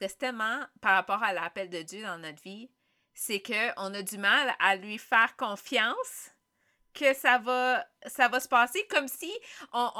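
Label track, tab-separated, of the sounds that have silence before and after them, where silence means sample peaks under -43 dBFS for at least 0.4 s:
3.170000	6.280000	sound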